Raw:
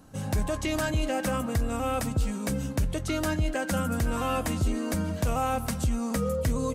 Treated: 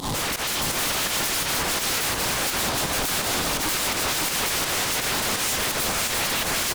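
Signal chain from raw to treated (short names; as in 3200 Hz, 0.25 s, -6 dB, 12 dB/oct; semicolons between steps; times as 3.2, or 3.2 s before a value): delta modulation 64 kbps, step -41.5 dBFS; EQ curve 630 Hz 0 dB, 970 Hz +13 dB, 2000 Hz -20 dB, 3400 Hz +11 dB, 5900 Hz +2 dB; limiter -19.5 dBFS, peak gain reduction 5.5 dB; sine folder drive 20 dB, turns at -19.5 dBFS; pump 84 bpm, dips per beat 2, -22 dB, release 0.107 s; soft clip -27 dBFS, distortion -13 dB; echo 0.557 s -3 dB; gain +2.5 dB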